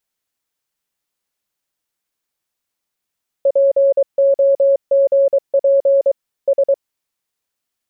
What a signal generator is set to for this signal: Morse "POGP S" 23 wpm 552 Hz -9 dBFS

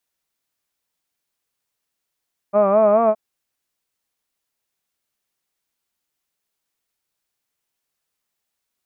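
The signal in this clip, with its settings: formant-synthesis vowel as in hud, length 0.62 s, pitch 197 Hz, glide +2.5 st, vibrato 4.7 Hz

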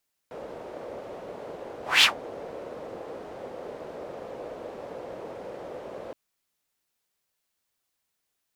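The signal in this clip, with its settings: whoosh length 5.82 s, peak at 1.72, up 0.21 s, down 0.12 s, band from 520 Hz, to 3300 Hz, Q 3, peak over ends 23 dB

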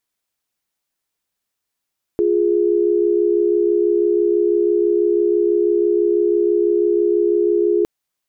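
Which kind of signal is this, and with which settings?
chord F4/G#4 sine, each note -16 dBFS 5.66 s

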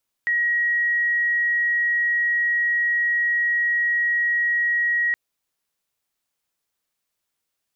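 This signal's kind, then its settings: tone sine 1900 Hz -18 dBFS 4.87 s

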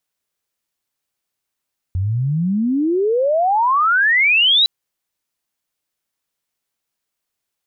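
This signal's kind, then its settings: chirp logarithmic 88 Hz -> 4000 Hz -16.5 dBFS -> -10 dBFS 2.71 s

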